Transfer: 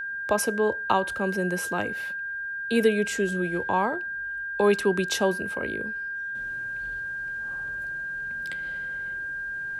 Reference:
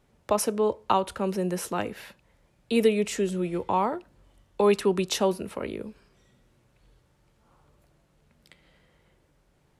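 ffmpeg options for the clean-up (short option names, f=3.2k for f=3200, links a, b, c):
-af "bandreject=f=1.6k:w=30,asetnsamples=n=441:p=0,asendcmd='6.35 volume volume -11.5dB',volume=0dB"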